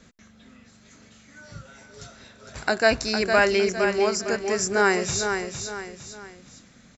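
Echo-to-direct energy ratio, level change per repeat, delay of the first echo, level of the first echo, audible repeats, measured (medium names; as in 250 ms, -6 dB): -6.0 dB, -8.0 dB, 458 ms, -6.5 dB, 3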